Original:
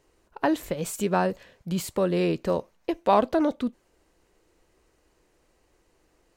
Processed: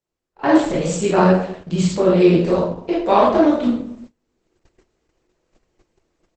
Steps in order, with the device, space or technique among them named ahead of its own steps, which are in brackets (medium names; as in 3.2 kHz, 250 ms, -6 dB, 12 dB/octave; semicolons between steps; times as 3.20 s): speakerphone in a meeting room (reverberation RT60 0.65 s, pre-delay 16 ms, DRR -7 dB; speakerphone echo 130 ms, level -28 dB; level rider gain up to 15.5 dB; gate -36 dBFS, range -25 dB; trim -1 dB; Opus 12 kbps 48 kHz)